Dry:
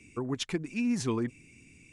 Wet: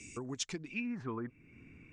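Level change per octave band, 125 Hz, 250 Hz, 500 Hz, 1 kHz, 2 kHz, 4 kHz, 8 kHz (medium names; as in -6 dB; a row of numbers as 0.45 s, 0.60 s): -9.0 dB, -9.5 dB, -9.0 dB, -5.5 dB, -2.5 dB, -5.0 dB, -2.0 dB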